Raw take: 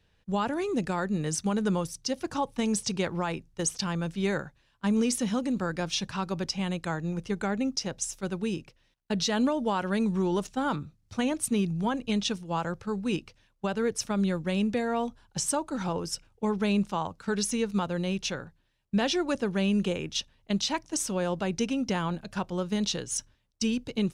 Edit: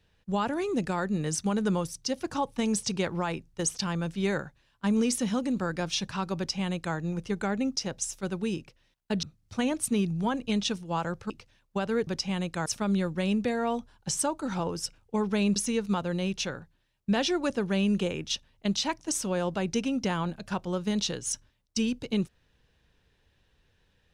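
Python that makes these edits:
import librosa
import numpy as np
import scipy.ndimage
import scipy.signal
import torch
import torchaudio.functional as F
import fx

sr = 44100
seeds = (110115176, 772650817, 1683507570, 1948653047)

y = fx.edit(x, sr, fx.duplicate(start_s=6.37, length_s=0.59, to_s=13.95),
    fx.cut(start_s=9.23, length_s=1.6),
    fx.cut(start_s=12.9, length_s=0.28),
    fx.cut(start_s=16.85, length_s=0.56), tone=tone)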